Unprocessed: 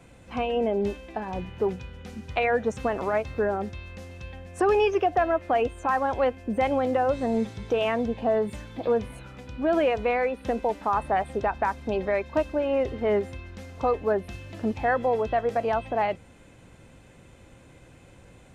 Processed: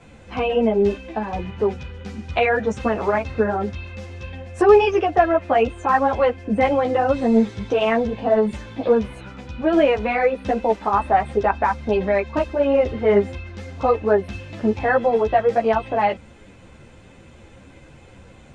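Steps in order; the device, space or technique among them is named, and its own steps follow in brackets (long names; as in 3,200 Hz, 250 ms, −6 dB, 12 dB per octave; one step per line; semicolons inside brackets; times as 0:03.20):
string-machine ensemble chorus (string-ensemble chorus; low-pass filter 7,000 Hz 12 dB per octave)
level +9 dB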